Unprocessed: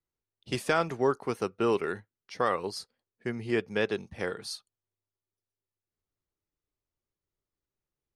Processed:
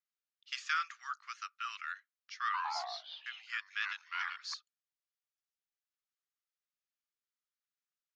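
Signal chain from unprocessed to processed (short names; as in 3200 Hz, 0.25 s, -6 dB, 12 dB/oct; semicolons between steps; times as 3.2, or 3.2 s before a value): Chebyshev band-pass 1200–7000 Hz, order 5; 2.43–4.54 echoes that change speed 0.107 s, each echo -3 st, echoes 3; gain -2.5 dB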